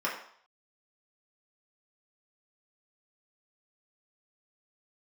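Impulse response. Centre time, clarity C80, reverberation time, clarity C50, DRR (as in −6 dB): 32 ms, 9.0 dB, 0.60 s, 6.0 dB, −6.5 dB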